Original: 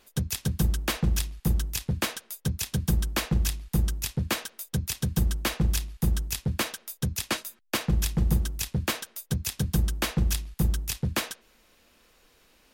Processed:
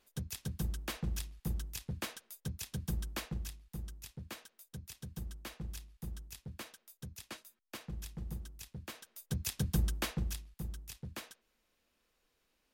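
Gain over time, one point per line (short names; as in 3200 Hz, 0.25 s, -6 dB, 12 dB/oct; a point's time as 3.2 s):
3.16 s -12 dB
3.61 s -18.5 dB
8.93 s -18.5 dB
9.41 s -6.5 dB
9.93 s -6.5 dB
10.57 s -17 dB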